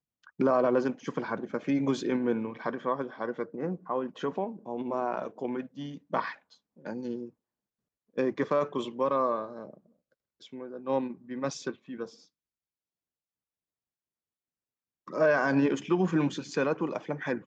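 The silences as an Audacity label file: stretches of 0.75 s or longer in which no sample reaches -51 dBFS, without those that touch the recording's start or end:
7.300000	8.160000	silence
12.240000	15.070000	silence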